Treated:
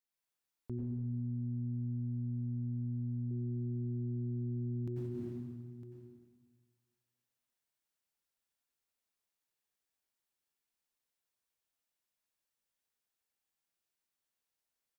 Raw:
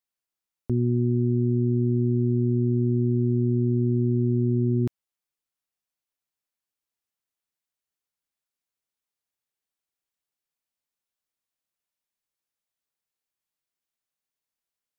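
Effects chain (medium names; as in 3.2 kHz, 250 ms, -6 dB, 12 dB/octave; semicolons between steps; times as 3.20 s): delay 957 ms -23.5 dB; plate-style reverb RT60 1.6 s, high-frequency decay 0.95×, pre-delay 80 ms, DRR -3.5 dB; peak limiter -27.5 dBFS, peak gain reduction 14.5 dB; 0.99–3.31 s: band-stop 360 Hz, Q 12; trim -5 dB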